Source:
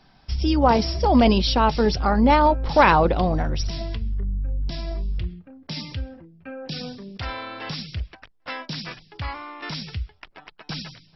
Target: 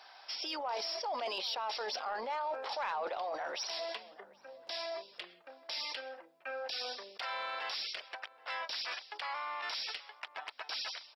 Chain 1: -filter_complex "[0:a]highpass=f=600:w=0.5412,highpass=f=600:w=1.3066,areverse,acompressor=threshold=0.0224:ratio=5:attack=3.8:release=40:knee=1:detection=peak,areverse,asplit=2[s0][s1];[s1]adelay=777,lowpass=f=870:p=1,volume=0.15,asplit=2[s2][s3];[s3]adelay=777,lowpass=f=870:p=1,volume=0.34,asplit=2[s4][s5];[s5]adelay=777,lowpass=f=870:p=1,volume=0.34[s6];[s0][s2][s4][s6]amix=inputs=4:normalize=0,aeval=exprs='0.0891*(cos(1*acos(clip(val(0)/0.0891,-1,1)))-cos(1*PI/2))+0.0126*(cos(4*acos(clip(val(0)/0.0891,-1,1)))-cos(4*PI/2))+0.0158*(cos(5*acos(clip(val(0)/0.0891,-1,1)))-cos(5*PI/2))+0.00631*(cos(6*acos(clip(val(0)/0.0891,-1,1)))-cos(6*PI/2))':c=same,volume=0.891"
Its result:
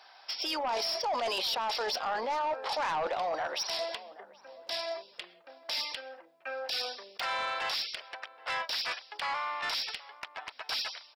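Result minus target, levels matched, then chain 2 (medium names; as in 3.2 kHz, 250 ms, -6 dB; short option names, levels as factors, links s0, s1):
compression: peak gain reduction -7 dB
-filter_complex "[0:a]highpass=f=600:w=0.5412,highpass=f=600:w=1.3066,areverse,acompressor=threshold=0.00794:ratio=5:attack=3.8:release=40:knee=1:detection=peak,areverse,asplit=2[s0][s1];[s1]adelay=777,lowpass=f=870:p=1,volume=0.15,asplit=2[s2][s3];[s3]adelay=777,lowpass=f=870:p=1,volume=0.34,asplit=2[s4][s5];[s5]adelay=777,lowpass=f=870:p=1,volume=0.34[s6];[s0][s2][s4][s6]amix=inputs=4:normalize=0,aeval=exprs='0.0891*(cos(1*acos(clip(val(0)/0.0891,-1,1)))-cos(1*PI/2))+0.0126*(cos(4*acos(clip(val(0)/0.0891,-1,1)))-cos(4*PI/2))+0.0158*(cos(5*acos(clip(val(0)/0.0891,-1,1)))-cos(5*PI/2))+0.00631*(cos(6*acos(clip(val(0)/0.0891,-1,1)))-cos(6*PI/2))':c=same,volume=0.891"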